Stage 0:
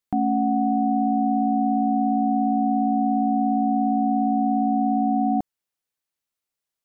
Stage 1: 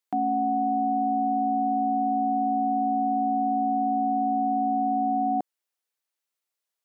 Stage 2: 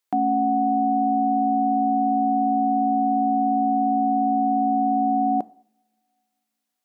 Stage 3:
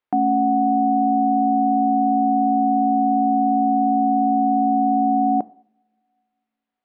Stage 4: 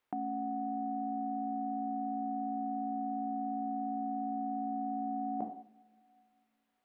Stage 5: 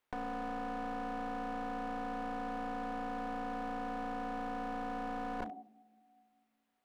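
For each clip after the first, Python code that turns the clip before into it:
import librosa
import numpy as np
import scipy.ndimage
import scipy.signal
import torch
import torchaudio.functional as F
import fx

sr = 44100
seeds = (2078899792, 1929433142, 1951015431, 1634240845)

y1 = scipy.signal.sosfilt(scipy.signal.butter(2, 360.0, 'highpass', fs=sr, output='sos'), x)
y2 = fx.rev_double_slope(y1, sr, seeds[0], early_s=0.54, late_s=2.3, knee_db=-25, drr_db=17.5)
y2 = F.gain(torch.from_numpy(y2), 4.5).numpy()
y3 = fx.air_absorb(y2, sr, metres=440.0)
y3 = F.gain(torch.from_numpy(y3), 4.0).numpy()
y4 = fx.over_compress(y3, sr, threshold_db=-29.0, ratio=-1.0)
y4 = F.gain(torch.from_numpy(y4), -7.0).numpy()
y5 = np.minimum(y4, 2.0 * 10.0 ** (-37.0 / 20.0) - y4)
y5 = F.gain(torch.from_numpy(y5), -1.0).numpy()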